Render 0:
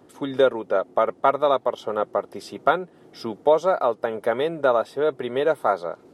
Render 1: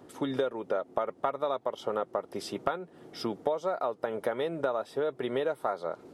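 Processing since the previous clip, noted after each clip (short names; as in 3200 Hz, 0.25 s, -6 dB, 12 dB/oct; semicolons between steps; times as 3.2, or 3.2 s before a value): compressor 6:1, threshold -27 dBFS, peak gain reduction 14 dB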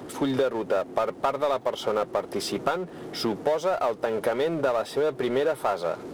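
power-law curve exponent 0.7; gain +1 dB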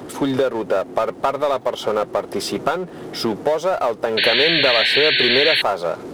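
painted sound noise, 4.17–5.62, 1500–4500 Hz -23 dBFS; gain +5.5 dB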